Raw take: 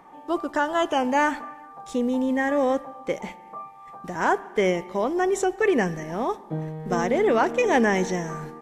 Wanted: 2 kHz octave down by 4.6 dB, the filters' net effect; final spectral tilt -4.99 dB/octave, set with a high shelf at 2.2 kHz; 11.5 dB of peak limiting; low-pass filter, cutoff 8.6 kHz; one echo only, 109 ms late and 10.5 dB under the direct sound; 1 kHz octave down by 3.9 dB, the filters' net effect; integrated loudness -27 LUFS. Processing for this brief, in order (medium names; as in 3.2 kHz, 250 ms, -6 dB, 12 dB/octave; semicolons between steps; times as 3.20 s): low-pass 8.6 kHz; peaking EQ 1 kHz -5 dB; peaking EQ 2 kHz -8 dB; treble shelf 2.2 kHz +8 dB; peak limiter -21 dBFS; delay 109 ms -10.5 dB; trim +3 dB